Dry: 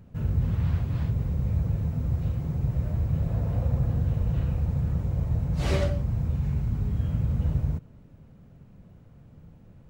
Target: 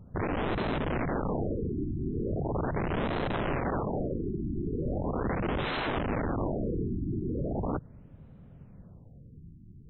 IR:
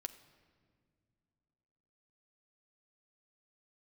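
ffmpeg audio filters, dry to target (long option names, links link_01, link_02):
-af "aeval=exprs='(mod(17.8*val(0)+1,2)-1)/17.8':channel_layout=same,aemphasis=mode=reproduction:type=50fm,afftfilt=real='re*lt(b*sr/1024,380*pow(4200/380,0.5+0.5*sin(2*PI*0.39*pts/sr)))':imag='im*lt(b*sr/1024,380*pow(4200/380,0.5+0.5*sin(2*PI*0.39*pts/sr)))':win_size=1024:overlap=0.75"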